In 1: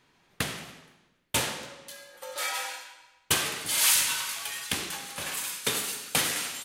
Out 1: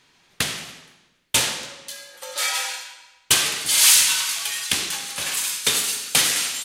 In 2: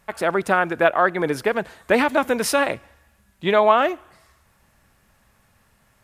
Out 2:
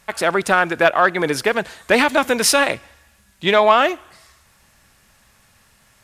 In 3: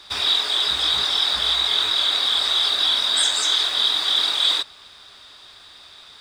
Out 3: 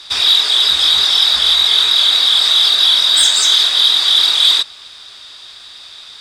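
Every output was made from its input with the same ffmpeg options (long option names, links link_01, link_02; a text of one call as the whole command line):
ffmpeg -i in.wav -filter_complex "[0:a]equalizer=frequency=5600:width=0.37:gain=9,asplit=2[link_01][link_02];[link_02]acontrast=30,volume=2dB[link_03];[link_01][link_03]amix=inputs=2:normalize=0,volume=-8.5dB" out.wav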